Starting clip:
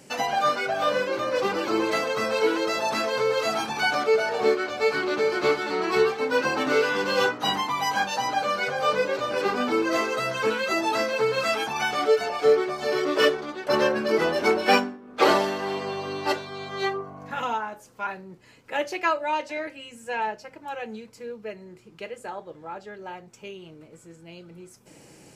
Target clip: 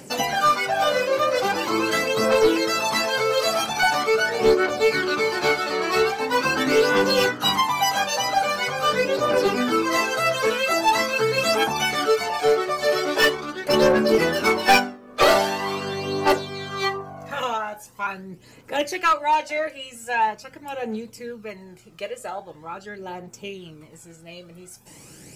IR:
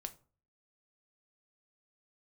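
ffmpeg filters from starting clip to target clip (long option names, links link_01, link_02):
-af "crystalizer=i=1:c=0,aphaser=in_gain=1:out_gain=1:delay=1.8:decay=0.51:speed=0.43:type=triangular,aeval=exprs='clip(val(0),-1,0.168)':channel_layout=same,volume=2.5dB"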